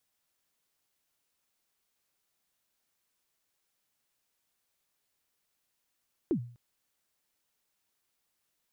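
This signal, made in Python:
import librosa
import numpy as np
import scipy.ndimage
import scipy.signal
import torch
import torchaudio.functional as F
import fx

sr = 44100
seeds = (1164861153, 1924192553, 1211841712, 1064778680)

y = fx.drum_kick(sr, seeds[0], length_s=0.25, level_db=-22.0, start_hz=390.0, end_hz=120.0, sweep_ms=84.0, decay_s=0.46, click=False)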